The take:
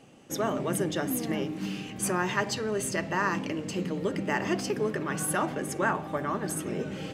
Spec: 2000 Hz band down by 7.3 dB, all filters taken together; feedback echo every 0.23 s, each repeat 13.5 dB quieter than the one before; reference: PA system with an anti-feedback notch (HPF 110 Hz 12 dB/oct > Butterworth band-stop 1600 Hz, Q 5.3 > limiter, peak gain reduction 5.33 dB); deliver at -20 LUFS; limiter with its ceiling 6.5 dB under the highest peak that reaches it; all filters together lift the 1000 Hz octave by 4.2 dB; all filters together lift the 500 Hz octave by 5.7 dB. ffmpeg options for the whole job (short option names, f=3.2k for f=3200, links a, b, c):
-af "equalizer=f=500:t=o:g=6.5,equalizer=f=1k:t=o:g=5,equalizer=f=2k:t=o:g=-7,alimiter=limit=-17dB:level=0:latency=1,highpass=110,asuperstop=centerf=1600:order=8:qfactor=5.3,aecho=1:1:230|460:0.211|0.0444,volume=10.5dB,alimiter=limit=-10dB:level=0:latency=1"